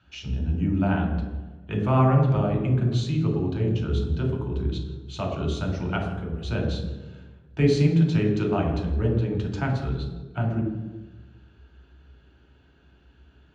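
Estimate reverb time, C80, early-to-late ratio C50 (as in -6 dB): 1.3 s, 6.0 dB, 4.0 dB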